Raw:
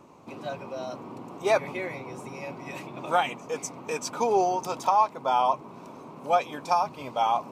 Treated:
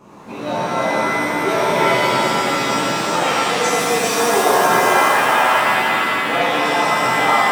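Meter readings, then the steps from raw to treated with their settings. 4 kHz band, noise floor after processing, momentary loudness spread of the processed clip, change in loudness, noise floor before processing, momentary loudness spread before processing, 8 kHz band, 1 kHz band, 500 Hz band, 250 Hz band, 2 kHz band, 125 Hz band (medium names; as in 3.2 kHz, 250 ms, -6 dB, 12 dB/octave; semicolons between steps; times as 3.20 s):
+18.5 dB, -29 dBFS, 5 LU, +11.5 dB, -46 dBFS, 15 LU, +16.0 dB, +10.0 dB, +10.5 dB, +14.0 dB, +21.0 dB, +13.0 dB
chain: peak limiter -22.5 dBFS, peak gain reduction 12 dB; pitch-shifted reverb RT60 3 s, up +7 st, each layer -2 dB, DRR -11.5 dB; trim +2.5 dB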